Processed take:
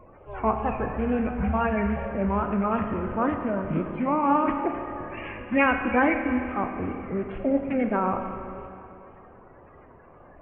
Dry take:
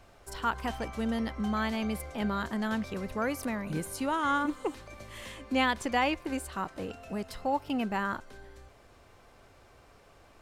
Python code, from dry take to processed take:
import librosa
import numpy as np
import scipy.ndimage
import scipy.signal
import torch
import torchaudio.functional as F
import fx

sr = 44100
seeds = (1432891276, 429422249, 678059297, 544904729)

y = fx.spec_quant(x, sr, step_db=30)
y = fx.formant_shift(y, sr, semitones=-4)
y = scipy.signal.sosfilt(scipy.signal.butter(12, 2700.0, 'lowpass', fs=sr, output='sos'), y)
y = fx.wow_flutter(y, sr, seeds[0], rate_hz=2.1, depth_cents=110.0)
y = fx.rev_schroeder(y, sr, rt60_s=2.7, comb_ms=25, drr_db=5.0)
y = F.gain(torch.from_numpy(y), 6.5).numpy()